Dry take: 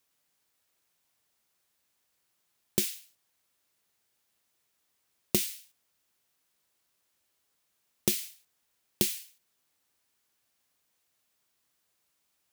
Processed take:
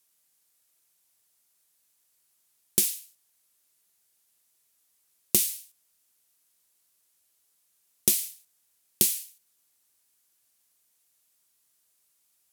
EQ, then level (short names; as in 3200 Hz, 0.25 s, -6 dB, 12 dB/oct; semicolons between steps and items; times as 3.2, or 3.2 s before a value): bell 11000 Hz +13 dB 1.8 oct; -3.0 dB